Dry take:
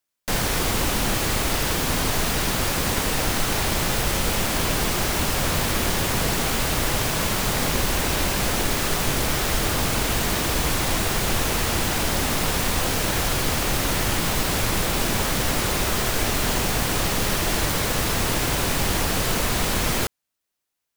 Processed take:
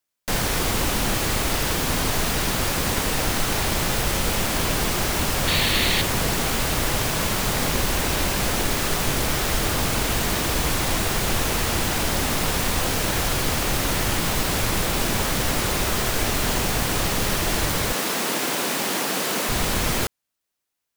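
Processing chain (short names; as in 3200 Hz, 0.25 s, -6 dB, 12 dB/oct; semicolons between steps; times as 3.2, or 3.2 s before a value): 5.47–6.02 painted sound noise 1700–4600 Hz -24 dBFS; 17.94–19.49 HPF 200 Hz 24 dB/oct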